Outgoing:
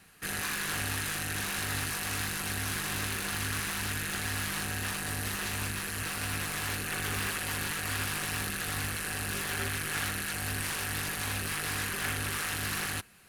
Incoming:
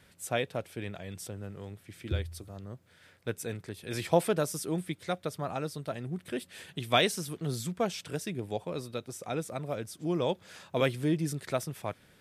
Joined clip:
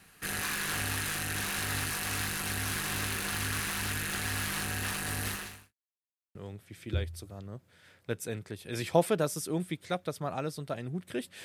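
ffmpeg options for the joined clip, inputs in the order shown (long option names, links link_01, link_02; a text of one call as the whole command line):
ffmpeg -i cue0.wav -i cue1.wav -filter_complex "[0:a]apad=whole_dur=11.44,atrim=end=11.44,asplit=2[link_01][link_02];[link_01]atrim=end=5.74,asetpts=PTS-STARTPTS,afade=type=out:start_time=5.29:duration=0.45:curve=qua[link_03];[link_02]atrim=start=5.74:end=6.35,asetpts=PTS-STARTPTS,volume=0[link_04];[1:a]atrim=start=1.53:end=6.62,asetpts=PTS-STARTPTS,afade=type=in:duration=0.004:curve=hsin[link_05];[link_03][link_04][link_05]concat=n=3:v=0:a=1" out.wav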